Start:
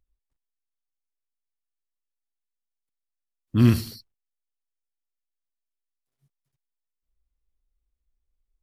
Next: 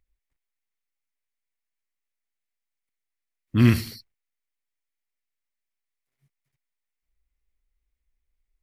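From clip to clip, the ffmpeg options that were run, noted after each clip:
-af "equalizer=f=2.1k:w=2.2:g=10.5"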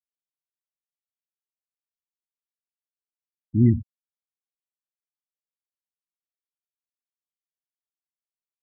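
-af "asoftclip=type=hard:threshold=-9dB,afftfilt=real='re*gte(hypot(re,im),0.178)':imag='im*gte(hypot(re,im),0.178)':win_size=1024:overlap=0.75"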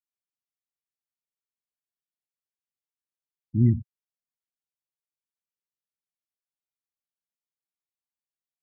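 -af "equalizer=f=140:w=1.2:g=7,volume=-7dB"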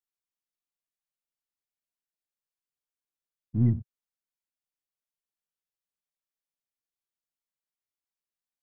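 -af "aeval=exprs='if(lt(val(0),0),0.708*val(0),val(0))':c=same,volume=-1.5dB"

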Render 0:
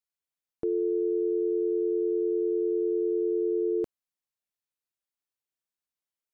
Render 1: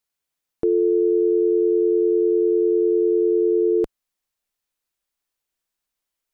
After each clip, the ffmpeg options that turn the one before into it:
-af "asubboost=boost=3.5:cutoff=53,volume=9dB"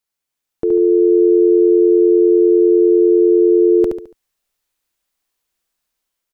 -af "dynaudnorm=f=300:g=5:m=6dB,aecho=1:1:71|142|213|284:0.562|0.202|0.0729|0.0262"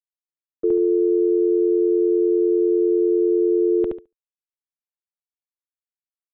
-af "acompressor=threshold=-15dB:ratio=8,aresample=8000,aresample=44100,agate=range=-33dB:threshold=-18dB:ratio=3:detection=peak"

